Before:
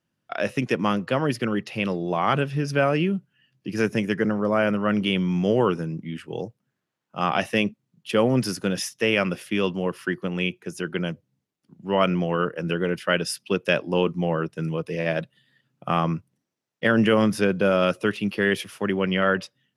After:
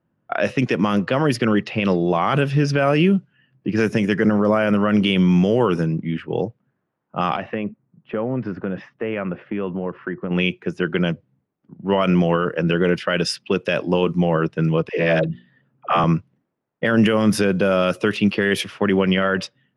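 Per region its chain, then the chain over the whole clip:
0:07.36–0:10.31: low-pass filter 1,900 Hz + downward compressor 3 to 1, threshold −32 dBFS
0:14.89–0:16.04: mains-hum notches 60/120/180/240/300/360 Hz + all-pass dispersion lows, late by 105 ms, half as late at 390 Hz
whole clip: low-pass that shuts in the quiet parts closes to 1,200 Hz, open at −17.5 dBFS; boost into a limiter +15.5 dB; level −7 dB

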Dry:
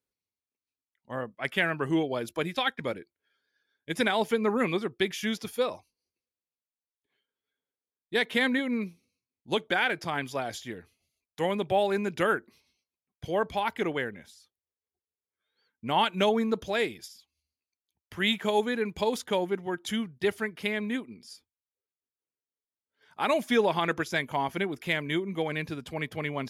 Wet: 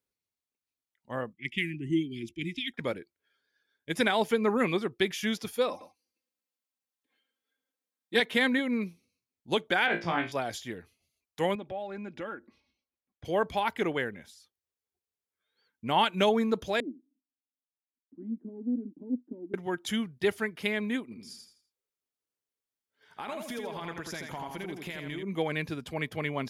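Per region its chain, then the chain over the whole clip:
0:01.33–0:02.74: Chebyshev band-stop filter 360–2,000 Hz, order 5 + low-pass that shuts in the quiet parts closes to 2,200 Hz, open at −26 dBFS + parametric band 4,200 Hz −12 dB 0.34 octaves
0:05.69–0:08.20: high-pass filter 130 Hz + comb filter 3.8 ms, depth 82% + single-tap delay 116 ms −12 dB
0:09.86–0:10.32: low-pass filter 3,700 Hz + double-tracking delay 31 ms −13 dB + flutter between parallel walls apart 3 metres, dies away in 0.25 s
0:11.55–0:13.25: comb filter 3.6 ms, depth 48% + downward compressor 2 to 1, threshold −42 dBFS + head-to-tape spacing loss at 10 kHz 20 dB
0:16.80–0:19.54: leveller curve on the samples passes 2 + flat-topped band-pass 270 Hz, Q 4.4 + highs frequency-modulated by the lows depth 0.12 ms
0:21.03–0:25.23: downward compressor 8 to 1, threshold −35 dBFS + repeating echo 83 ms, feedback 34%, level −4.5 dB
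whole clip: no processing

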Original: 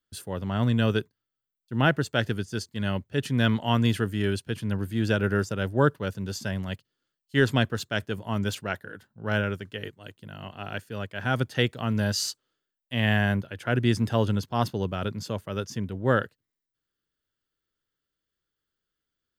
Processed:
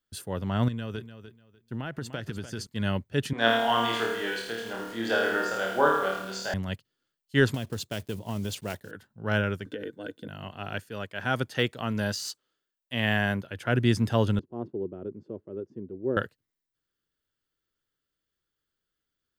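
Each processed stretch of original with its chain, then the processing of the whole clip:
0:00.68–0:02.67: downward compressor 16 to 1, threshold −29 dBFS + repeating echo 297 ms, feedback 21%, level −11.5 dB
0:03.33–0:06.54: loudspeaker in its box 490–7,000 Hz, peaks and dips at 750 Hz +8 dB, 2,600 Hz −7 dB, 5,700 Hz −5 dB + flutter between parallel walls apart 4.5 metres, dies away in 0.73 s + feedback echo at a low word length 83 ms, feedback 55%, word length 7 bits, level −7 dB
0:07.54–0:08.93: one scale factor per block 5 bits + parametric band 1,500 Hz −8.5 dB 1 octave + downward compressor 12 to 1, threshold −26 dBFS
0:09.66–0:10.28: high-pass filter 130 Hz + downward compressor 5 to 1, threshold −43 dBFS + hollow resonant body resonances 300/470/1,500/3,500 Hz, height 17 dB, ringing for 30 ms
0:10.89–0:13.51: de-essing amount 65% + low-shelf EQ 160 Hz −8.5 dB
0:14.39–0:16.17: resonant band-pass 360 Hz, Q 4 + spectral tilt −2 dB per octave
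whole clip: no processing

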